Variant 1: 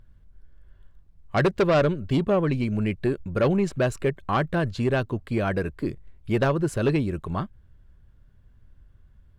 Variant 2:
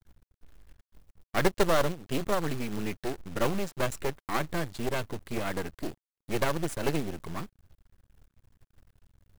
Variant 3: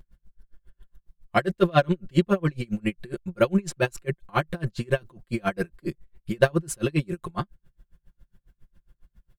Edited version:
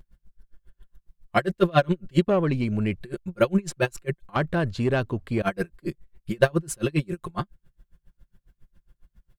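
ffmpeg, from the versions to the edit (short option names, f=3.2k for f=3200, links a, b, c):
-filter_complex "[0:a]asplit=2[a][b];[2:a]asplit=3[c][d][e];[c]atrim=end=2.282[f];[a]atrim=start=2.278:end=3.012[g];[d]atrim=start=3.008:end=4.362[h];[b]atrim=start=4.358:end=5.422[i];[e]atrim=start=5.418[j];[f][g]acrossfade=d=0.004:c1=hsin:c2=hsin[k];[k][h]acrossfade=d=0.004:c1=hsin:c2=hsin[l];[l][i]acrossfade=d=0.004:c1=hsin:c2=hsin[m];[m][j]acrossfade=d=0.004:c1=hsin:c2=hsin"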